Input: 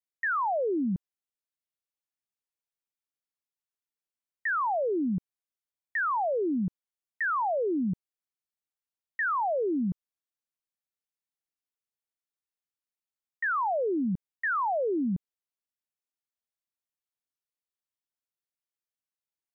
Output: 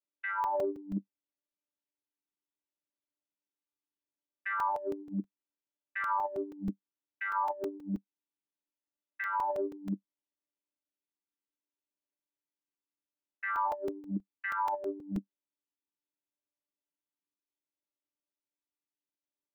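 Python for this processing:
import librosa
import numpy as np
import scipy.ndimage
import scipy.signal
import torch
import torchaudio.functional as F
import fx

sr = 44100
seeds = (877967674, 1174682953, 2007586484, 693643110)

y = fx.chord_vocoder(x, sr, chord='bare fifth', root=55)
y = y + 0.93 * np.pad(y, (int(3.1 * sr / 1000.0), 0))[:len(y)]
y = fx.over_compress(y, sr, threshold_db=-30.0, ratio=-0.5)
y = fx.buffer_crackle(y, sr, first_s=0.44, period_s=0.16, block=128, kind='zero')
y = y * librosa.db_to_amplitude(-3.5)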